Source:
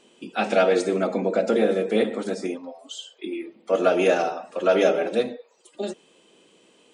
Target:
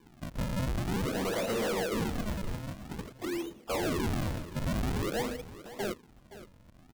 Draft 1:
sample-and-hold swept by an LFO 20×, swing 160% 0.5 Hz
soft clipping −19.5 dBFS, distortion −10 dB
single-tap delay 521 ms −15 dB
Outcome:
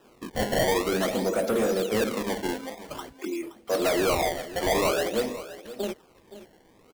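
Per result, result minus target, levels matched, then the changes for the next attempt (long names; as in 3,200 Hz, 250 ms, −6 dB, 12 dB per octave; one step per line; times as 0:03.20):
sample-and-hold swept by an LFO: distortion −13 dB; soft clipping: distortion −6 dB
change: sample-and-hold swept by an LFO 65×, swing 160% 0.5 Hz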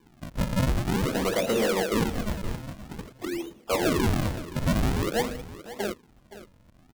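soft clipping: distortion −6 dB
change: soft clipping −29 dBFS, distortion −4 dB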